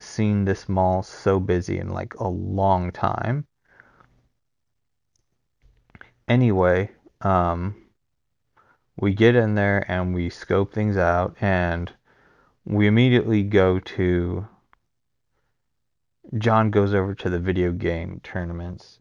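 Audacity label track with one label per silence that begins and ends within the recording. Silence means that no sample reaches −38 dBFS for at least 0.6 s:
4.010000	5.900000	silence
7.730000	8.980000	silence
11.910000	12.660000	silence
14.730000	16.290000	silence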